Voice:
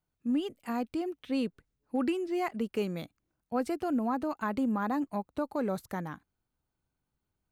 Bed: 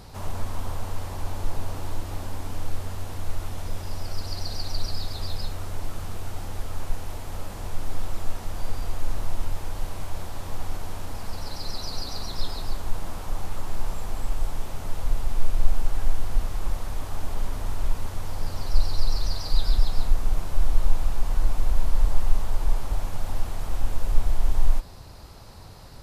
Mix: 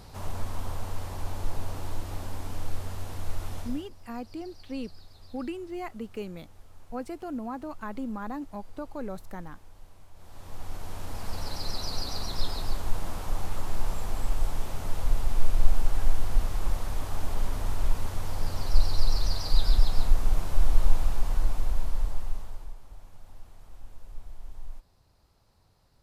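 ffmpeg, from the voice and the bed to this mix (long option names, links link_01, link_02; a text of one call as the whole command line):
ffmpeg -i stem1.wav -i stem2.wav -filter_complex "[0:a]adelay=3400,volume=-5dB[link_01];[1:a]volume=17dB,afade=type=out:start_time=3.57:duration=0.32:silence=0.133352,afade=type=in:start_time=10.15:duration=1.24:silence=0.1,afade=type=out:start_time=20.91:duration=1.84:silence=0.1[link_02];[link_01][link_02]amix=inputs=2:normalize=0" out.wav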